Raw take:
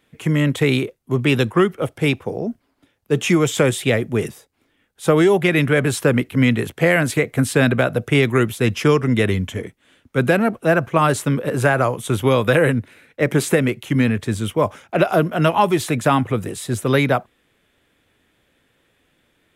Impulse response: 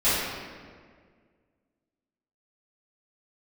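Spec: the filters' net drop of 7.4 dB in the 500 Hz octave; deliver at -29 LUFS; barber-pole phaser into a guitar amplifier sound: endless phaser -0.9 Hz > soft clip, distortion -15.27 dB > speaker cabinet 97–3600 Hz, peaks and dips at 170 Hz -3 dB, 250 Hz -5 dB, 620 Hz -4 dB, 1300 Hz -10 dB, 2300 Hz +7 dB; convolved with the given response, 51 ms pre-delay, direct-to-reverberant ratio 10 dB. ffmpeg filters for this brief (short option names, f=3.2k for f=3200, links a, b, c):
-filter_complex "[0:a]equalizer=f=500:t=o:g=-7.5,asplit=2[a][b];[1:a]atrim=start_sample=2205,adelay=51[c];[b][c]afir=irnorm=-1:irlink=0,volume=-26.5dB[d];[a][d]amix=inputs=2:normalize=0,asplit=2[e][f];[f]afreqshift=-0.9[g];[e][g]amix=inputs=2:normalize=1,asoftclip=threshold=-16.5dB,highpass=97,equalizer=f=170:t=q:w=4:g=-3,equalizer=f=250:t=q:w=4:g=-5,equalizer=f=620:t=q:w=4:g=-4,equalizer=f=1.3k:t=q:w=4:g=-10,equalizer=f=2.3k:t=q:w=4:g=7,lowpass=f=3.6k:w=0.5412,lowpass=f=3.6k:w=1.3066,volume=-2.5dB"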